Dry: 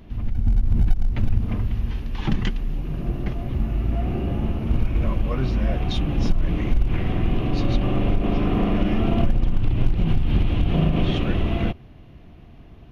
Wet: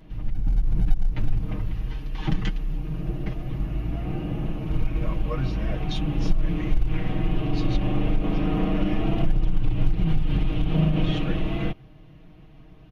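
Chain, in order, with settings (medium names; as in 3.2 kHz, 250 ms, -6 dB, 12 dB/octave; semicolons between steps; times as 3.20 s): comb 6.4 ms, depth 84%; trim -5 dB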